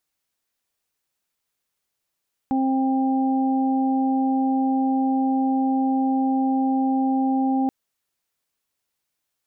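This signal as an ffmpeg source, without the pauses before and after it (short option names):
-f lavfi -i "aevalsrc='0.112*sin(2*PI*265*t)+0.0168*sin(2*PI*530*t)+0.0562*sin(2*PI*795*t)':d=5.18:s=44100"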